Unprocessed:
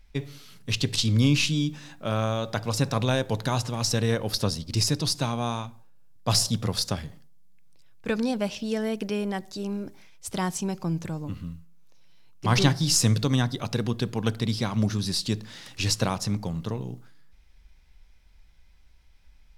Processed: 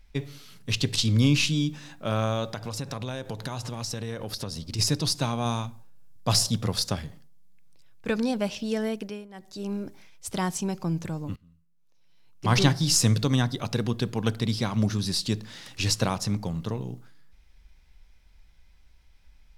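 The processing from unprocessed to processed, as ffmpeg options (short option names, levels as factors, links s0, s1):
-filter_complex "[0:a]asplit=3[s0][s1][s2];[s0]afade=t=out:st=2.51:d=0.02[s3];[s1]acompressor=threshold=0.0316:ratio=4:attack=3.2:release=140:knee=1:detection=peak,afade=t=in:st=2.51:d=0.02,afade=t=out:st=4.78:d=0.02[s4];[s2]afade=t=in:st=4.78:d=0.02[s5];[s3][s4][s5]amix=inputs=3:normalize=0,asettb=1/sr,asplit=3[s6][s7][s8];[s6]atrim=end=5.454[s9];[s7]atrim=start=5.45:end=6.28,asetpts=PTS-STARTPTS,afade=t=in:d=0.004:c=qsin,afade=t=out:st=0.826:d=0.004:c=qsin,bass=f=250:g=4,treble=f=4000:g=4[s10];[s8]atrim=start=6.276[s11];[s9][s10]acrossfade=d=0.004:c1=hsin:c2=qsin[s12];[s12][s11]acrossfade=d=0.004:c1=qsin:c2=hsin,asplit=4[s13][s14][s15][s16];[s13]atrim=end=9.28,asetpts=PTS-STARTPTS,afade=t=out:st=8.85:d=0.43:silence=0.0891251[s17];[s14]atrim=start=9.28:end=9.29,asetpts=PTS-STARTPTS,volume=0.0891[s18];[s15]atrim=start=9.29:end=11.36,asetpts=PTS-STARTPTS,afade=t=in:d=0.43:silence=0.0891251,afade=t=out:st=2.066:d=0.004:c=hsin:silence=0.0749894[s19];[s16]atrim=start=11.36,asetpts=PTS-STARTPTS,afade=t=in:d=1.11:c=qua:silence=0.0749894[s20];[s17][s18][s19][s20]concat=n=4:v=0:a=1"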